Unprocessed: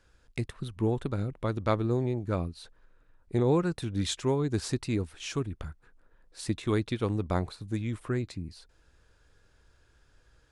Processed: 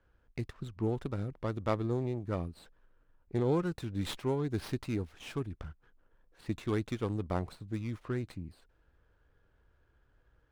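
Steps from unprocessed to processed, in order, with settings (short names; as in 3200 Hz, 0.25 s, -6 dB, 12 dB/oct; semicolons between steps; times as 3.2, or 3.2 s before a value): low-pass opened by the level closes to 1800 Hz, open at -27 dBFS; running maximum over 5 samples; gain -4.5 dB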